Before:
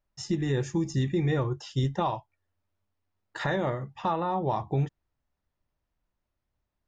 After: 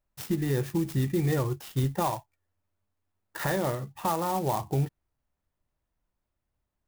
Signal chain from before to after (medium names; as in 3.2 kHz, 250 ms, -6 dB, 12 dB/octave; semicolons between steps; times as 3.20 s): sampling jitter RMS 0.049 ms